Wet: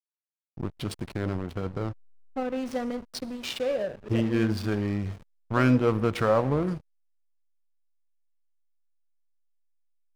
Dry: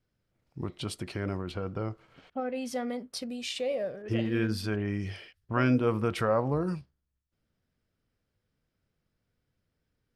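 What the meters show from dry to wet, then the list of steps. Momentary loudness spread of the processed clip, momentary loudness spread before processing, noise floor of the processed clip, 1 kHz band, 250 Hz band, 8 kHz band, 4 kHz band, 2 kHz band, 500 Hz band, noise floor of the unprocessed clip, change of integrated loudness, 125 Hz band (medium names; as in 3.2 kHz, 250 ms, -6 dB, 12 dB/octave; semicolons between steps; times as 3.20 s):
14 LU, 14 LU, under -85 dBFS, +3.0 dB, +3.5 dB, -1.0 dB, +0.5 dB, +2.0 dB, +3.0 dB, -82 dBFS, +3.5 dB, +3.5 dB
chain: Schroeder reverb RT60 1 s, combs from 31 ms, DRR 15 dB; hysteresis with a dead band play -33 dBFS; trim +4 dB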